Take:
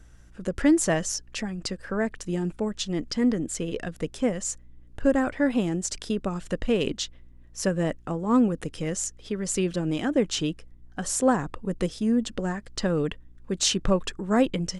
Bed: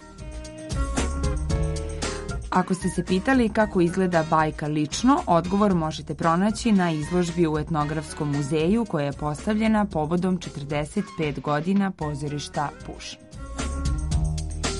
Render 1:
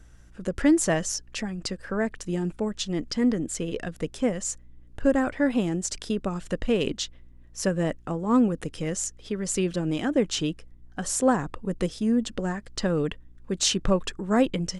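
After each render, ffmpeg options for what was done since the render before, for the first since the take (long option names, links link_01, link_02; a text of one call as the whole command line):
ffmpeg -i in.wav -af anull out.wav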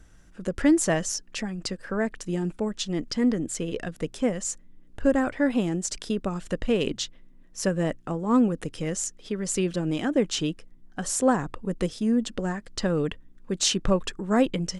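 ffmpeg -i in.wav -af "bandreject=frequency=60:width_type=h:width=4,bandreject=frequency=120:width_type=h:width=4" out.wav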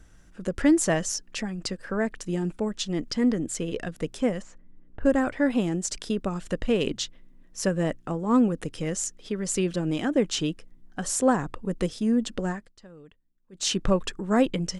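ffmpeg -i in.wav -filter_complex "[0:a]asplit=3[link_01][link_02][link_03];[link_01]afade=type=out:start_time=4.41:duration=0.02[link_04];[link_02]lowpass=1900,afade=type=in:start_time=4.41:duration=0.02,afade=type=out:start_time=5.04:duration=0.02[link_05];[link_03]afade=type=in:start_time=5.04:duration=0.02[link_06];[link_04][link_05][link_06]amix=inputs=3:normalize=0,asplit=3[link_07][link_08][link_09];[link_07]atrim=end=12.73,asetpts=PTS-STARTPTS,afade=type=out:start_time=12.5:duration=0.23:silence=0.0707946[link_10];[link_08]atrim=start=12.73:end=13.52,asetpts=PTS-STARTPTS,volume=-23dB[link_11];[link_09]atrim=start=13.52,asetpts=PTS-STARTPTS,afade=type=in:duration=0.23:silence=0.0707946[link_12];[link_10][link_11][link_12]concat=n=3:v=0:a=1" out.wav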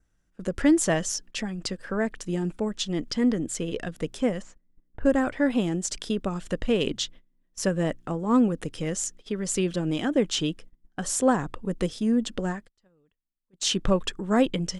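ffmpeg -i in.wav -af "adynamicequalizer=threshold=0.00316:dfrequency=3300:dqfactor=5.8:tfrequency=3300:tqfactor=5.8:attack=5:release=100:ratio=0.375:range=2.5:mode=boostabove:tftype=bell,agate=range=-17dB:threshold=-43dB:ratio=16:detection=peak" out.wav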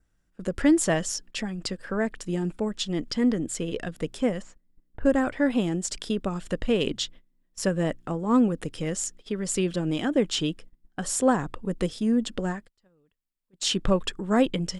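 ffmpeg -i in.wav -af "bandreject=frequency=6100:width=15" out.wav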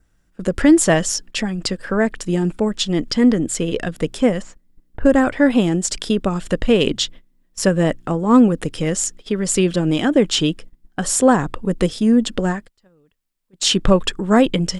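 ffmpeg -i in.wav -af "volume=9dB,alimiter=limit=-3dB:level=0:latency=1" out.wav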